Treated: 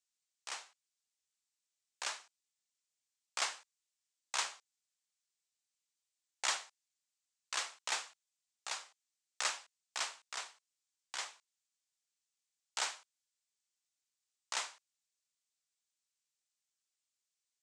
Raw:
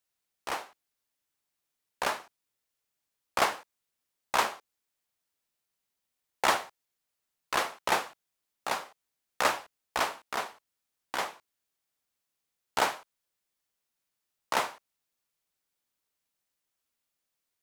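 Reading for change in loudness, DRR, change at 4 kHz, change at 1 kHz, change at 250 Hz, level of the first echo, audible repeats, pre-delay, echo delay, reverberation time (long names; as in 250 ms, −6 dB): −8.0 dB, no reverb audible, −4.0 dB, −14.5 dB, −25.0 dB, no echo audible, no echo audible, no reverb audible, no echo audible, no reverb audible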